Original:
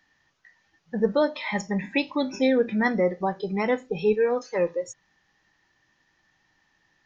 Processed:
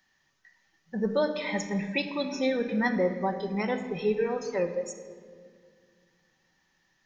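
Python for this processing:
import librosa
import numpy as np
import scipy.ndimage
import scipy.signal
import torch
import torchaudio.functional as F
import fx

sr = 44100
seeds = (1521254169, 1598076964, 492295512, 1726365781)

y = fx.high_shelf(x, sr, hz=5600.0, db=10.0)
y = fx.room_shoebox(y, sr, seeds[0], volume_m3=3400.0, walls='mixed', distance_m=1.1)
y = y * 10.0 ** (-5.5 / 20.0)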